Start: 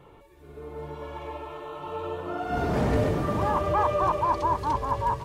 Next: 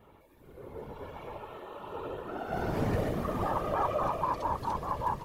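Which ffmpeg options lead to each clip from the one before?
-af "aexciter=amount=3.1:drive=2.4:freq=11k,afftfilt=real='hypot(re,im)*cos(2*PI*random(0))':imag='hypot(re,im)*sin(2*PI*random(1))':win_size=512:overlap=0.75"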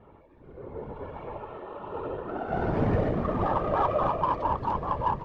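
-af "adynamicsmooth=sensitivity=1.5:basefreq=2.1k,volume=5dB"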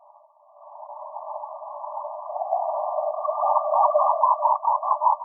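-af "afftfilt=real='re*between(b*sr/4096,580,1200)':imag='im*between(b*sr/4096,580,1200)':win_size=4096:overlap=0.75,volume=8dB"

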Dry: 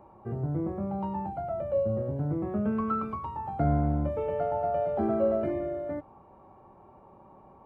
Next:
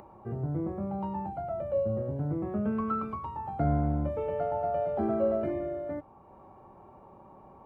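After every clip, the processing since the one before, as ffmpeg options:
-af "acompressor=mode=upward:threshold=-45dB:ratio=2.5,volume=-1.5dB"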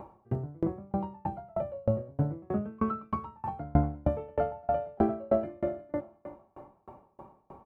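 -af "aecho=1:1:351|702|1053|1404:0.2|0.0778|0.0303|0.0118,aeval=exprs='val(0)*pow(10,-33*if(lt(mod(3.2*n/s,1),2*abs(3.2)/1000),1-mod(3.2*n/s,1)/(2*abs(3.2)/1000),(mod(3.2*n/s,1)-2*abs(3.2)/1000)/(1-2*abs(3.2)/1000))/20)':c=same,volume=8dB"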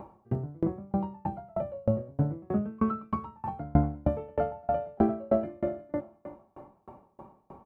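-af "equalizer=f=210:w=1.5:g=3.5"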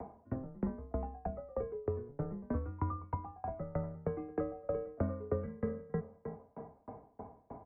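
-filter_complex "[0:a]acrossover=split=210|460|1200[a][b][c][d];[a]acompressor=threshold=-39dB:ratio=4[e];[b]acompressor=threshold=-38dB:ratio=4[f];[c]acompressor=threshold=-45dB:ratio=4[g];[d]acompressor=threshold=-50dB:ratio=4[h];[e][f][g][h]amix=inputs=4:normalize=0,highpass=f=210:t=q:w=0.5412,highpass=f=210:t=q:w=1.307,lowpass=f=2.2k:t=q:w=0.5176,lowpass=f=2.2k:t=q:w=0.7071,lowpass=f=2.2k:t=q:w=1.932,afreqshift=-130,volume=1.5dB"

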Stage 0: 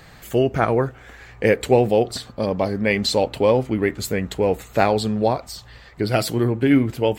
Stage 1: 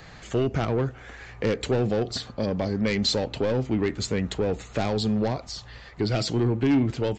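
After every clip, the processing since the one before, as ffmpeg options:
-filter_complex "[0:a]aresample=16000,asoftclip=type=tanh:threshold=-15dB,aresample=44100,acrossover=split=350|3000[a][b][c];[b]acompressor=threshold=-31dB:ratio=2.5[d];[a][d][c]amix=inputs=3:normalize=0"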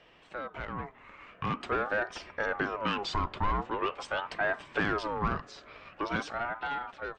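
-filter_complex "[0:a]dynaudnorm=f=560:g=5:m=10.5dB,acrossover=split=440 2500:gain=0.224 1 0.126[a][b][c];[a][b][c]amix=inputs=3:normalize=0,aeval=exprs='val(0)*sin(2*PI*810*n/s+810*0.4/0.45*sin(2*PI*0.45*n/s))':c=same,volume=-6dB"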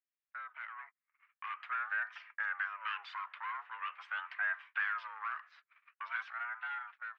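-af "highpass=f=1.2k:w=0.5412,highpass=f=1.2k:w=1.3066,agate=range=-39dB:threshold=-49dB:ratio=16:detection=peak,lowpass=f=2k:t=q:w=1.7,volume=-6dB"

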